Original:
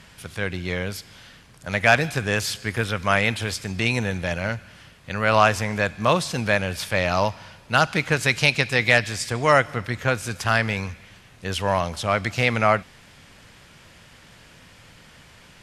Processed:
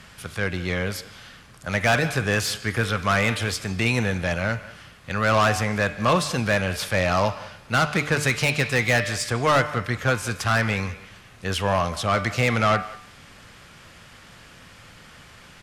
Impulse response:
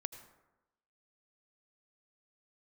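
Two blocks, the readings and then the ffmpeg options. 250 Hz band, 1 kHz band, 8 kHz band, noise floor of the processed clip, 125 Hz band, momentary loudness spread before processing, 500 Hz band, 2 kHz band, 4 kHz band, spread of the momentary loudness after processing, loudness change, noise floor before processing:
+1.0 dB, -1.0 dB, +1.5 dB, -48 dBFS, +1.5 dB, 11 LU, -1.0 dB, -1.5 dB, -1.0 dB, 11 LU, -0.5 dB, -50 dBFS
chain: -filter_complex "[0:a]equalizer=f=1.2k:t=o:w=0.7:g=4.5,bandreject=f=960:w=17,bandreject=f=148.6:t=h:w=4,bandreject=f=297.2:t=h:w=4,bandreject=f=445.8:t=h:w=4,bandreject=f=594.4:t=h:w=4,bandreject=f=743:t=h:w=4,bandreject=f=891.6:t=h:w=4,bandreject=f=1.0402k:t=h:w=4,bandreject=f=1.1888k:t=h:w=4,bandreject=f=1.3374k:t=h:w=4,bandreject=f=1.486k:t=h:w=4,bandreject=f=1.6346k:t=h:w=4,bandreject=f=1.7832k:t=h:w=4,bandreject=f=1.9318k:t=h:w=4,bandreject=f=2.0804k:t=h:w=4,bandreject=f=2.229k:t=h:w=4,bandreject=f=2.3776k:t=h:w=4,bandreject=f=2.5262k:t=h:w=4,bandreject=f=2.6748k:t=h:w=4,bandreject=f=2.8234k:t=h:w=4,bandreject=f=2.972k:t=h:w=4,bandreject=f=3.1206k:t=h:w=4,bandreject=f=3.2692k:t=h:w=4,bandreject=f=3.4178k:t=h:w=4,bandreject=f=3.5664k:t=h:w=4,bandreject=f=3.715k:t=h:w=4,bandreject=f=3.8636k:t=h:w=4,bandreject=f=4.0122k:t=h:w=4,acrossover=split=430[a][b];[b]asoftclip=type=tanh:threshold=-17.5dB[c];[a][c]amix=inputs=2:normalize=0,asplit=2[d][e];[e]adelay=180,highpass=300,lowpass=3.4k,asoftclip=type=hard:threshold=-20dB,volume=-17dB[f];[d][f]amix=inputs=2:normalize=0,volume=1.5dB"

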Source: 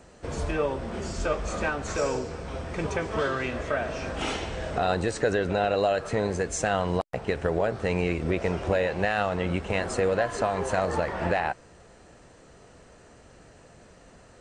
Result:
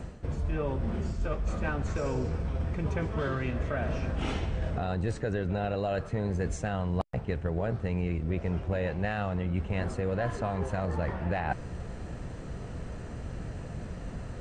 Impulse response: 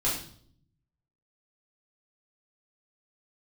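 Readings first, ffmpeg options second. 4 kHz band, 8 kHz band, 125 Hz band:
-9.5 dB, -12.5 dB, +3.0 dB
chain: -af "bass=f=250:g=13,treble=f=4k:g=-6,areverse,acompressor=threshold=-33dB:ratio=12,areverse,volume=6dB"

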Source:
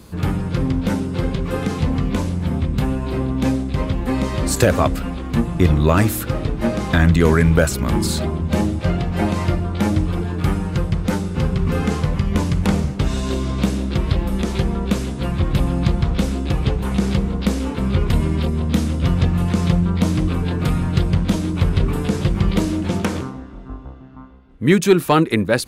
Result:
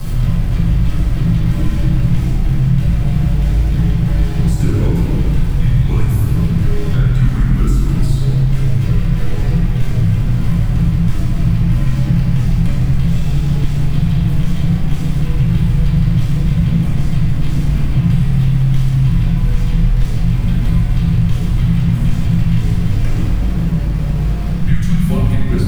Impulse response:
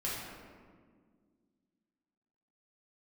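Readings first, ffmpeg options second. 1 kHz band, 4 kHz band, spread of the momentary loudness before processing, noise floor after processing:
-7.5 dB, -3.5 dB, 7 LU, -17 dBFS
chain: -filter_complex "[0:a]aeval=exprs='val(0)+0.5*0.106*sgn(val(0))':c=same,afreqshift=-210,bass=f=250:g=10,treble=f=4k:g=-3[a];[1:a]atrim=start_sample=2205[b];[a][b]afir=irnorm=-1:irlink=0,acrossover=split=720|1700[c][d][e];[c]acompressor=threshold=-4dB:ratio=4[f];[d]acompressor=threshold=-38dB:ratio=4[g];[e]acompressor=threshold=-29dB:ratio=4[h];[f][g][h]amix=inputs=3:normalize=0,volume=-6dB"

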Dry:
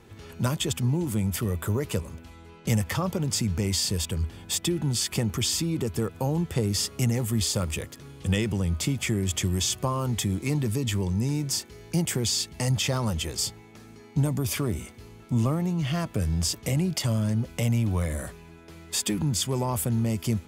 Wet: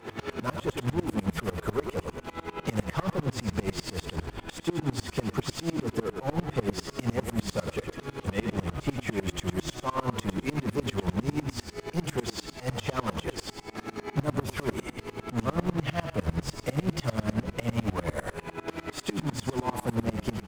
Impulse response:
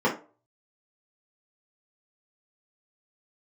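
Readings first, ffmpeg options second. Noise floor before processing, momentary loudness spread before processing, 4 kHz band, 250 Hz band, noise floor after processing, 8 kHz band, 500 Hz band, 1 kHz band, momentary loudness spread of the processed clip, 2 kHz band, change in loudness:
-49 dBFS, 5 LU, -9.0 dB, -3.0 dB, -52 dBFS, -14.0 dB, 0.0 dB, +2.0 dB, 6 LU, -0.5 dB, -5.5 dB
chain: -filter_complex "[0:a]acompressor=mode=upward:threshold=-31dB:ratio=2.5,acrusher=bits=4:mode=log:mix=0:aa=0.000001,asplit=2[a][b];[b]highpass=f=720:p=1,volume=26dB,asoftclip=type=tanh:threshold=-14dB[c];[a][c]amix=inputs=2:normalize=0,lowpass=f=1.1k:p=1,volume=-6dB,asplit=2[d][e];[e]asplit=6[f][g][h][i][j][k];[f]adelay=105,afreqshift=-30,volume=-7dB[l];[g]adelay=210,afreqshift=-60,volume=-13dB[m];[h]adelay=315,afreqshift=-90,volume=-19dB[n];[i]adelay=420,afreqshift=-120,volume=-25.1dB[o];[j]adelay=525,afreqshift=-150,volume=-31.1dB[p];[k]adelay=630,afreqshift=-180,volume=-37.1dB[q];[l][m][n][o][p][q]amix=inputs=6:normalize=0[r];[d][r]amix=inputs=2:normalize=0,aeval=exprs='val(0)*pow(10,-26*if(lt(mod(-10*n/s,1),2*abs(-10)/1000),1-mod(-10*n/s,1)/(2*abs(-10)/1000),(mod(-10*n/s,1)-2*abs(-10)/1000)/(1-2*abs(-10)/1000))/20)':c=same"

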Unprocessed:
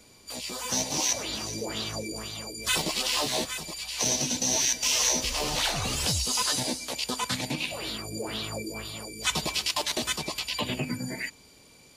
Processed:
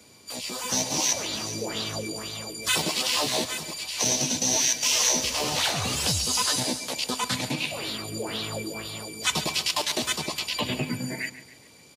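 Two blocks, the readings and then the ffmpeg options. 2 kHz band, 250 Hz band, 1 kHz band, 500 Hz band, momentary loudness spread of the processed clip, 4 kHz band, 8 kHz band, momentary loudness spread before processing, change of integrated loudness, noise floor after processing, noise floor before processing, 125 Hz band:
+2.0 dB, +2.0 dB, +2.0 dB, +2.0 dB, 11 LU, +2.0 dB, +2.0 dB, 11 LU, +2.0 dB, -52 dBFS, -55 dBFS, +1.5 dB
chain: -filter_complex "[0:a]highpass=f=76:w=0.5412,highpass=f=76:w=1.3066,asplit=2[a][b];[b]aecho=0:1:139|278|417|556:0.178|0.0836|0.0393|0.0185[c];[a][c]amix=inputs=2:normalize=0,volume=2dB"

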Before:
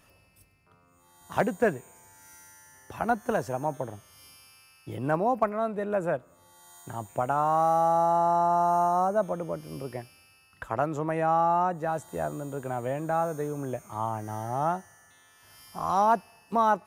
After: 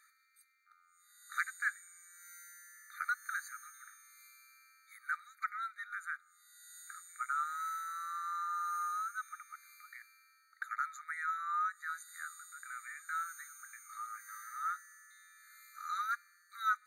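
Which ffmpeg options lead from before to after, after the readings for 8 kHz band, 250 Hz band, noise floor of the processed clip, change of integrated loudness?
-2.0 dB, under -40 dB, -69 dBFS, -12.0 dB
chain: -af "afftfilt=real='re*eq(mod(floor(b*sr/1024/1200),2),1)':imag='im*eq(mod(floor(b*sr/1024/1200),2),1)':win_size=1024:overlap=0.75"

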